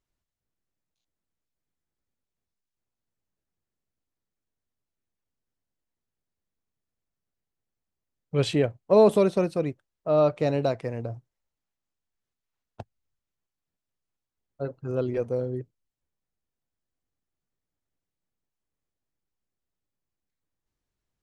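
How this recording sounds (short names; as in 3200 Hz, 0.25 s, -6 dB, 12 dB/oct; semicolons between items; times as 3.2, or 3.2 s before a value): noise floor -87 dBFS; spectral tilt -6.5 dB/oct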